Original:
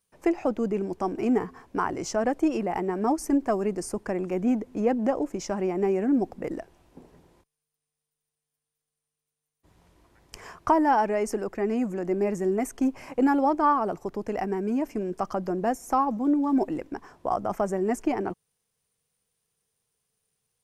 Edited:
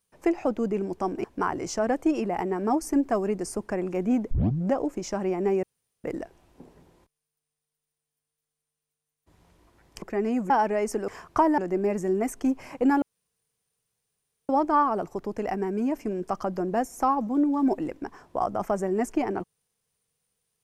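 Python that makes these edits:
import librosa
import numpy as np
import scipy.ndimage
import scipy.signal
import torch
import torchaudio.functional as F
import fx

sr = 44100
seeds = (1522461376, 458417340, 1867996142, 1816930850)

y = fx.edit(x, sr, fx.cut(start_s=1.24, length_s=0.37),
    fx.tape_start(start_s=4.68, length_s=0.4),
    fx.room_tone_fill(start_s=6.0, length_s=0.41),
    fx.swap(start_s=10.39, length_s=0.5, other_s=11.47, other_length_s=0.48),
    fx.insert_room_tone(at_s=13.39, length_s=1.47), tone=tone)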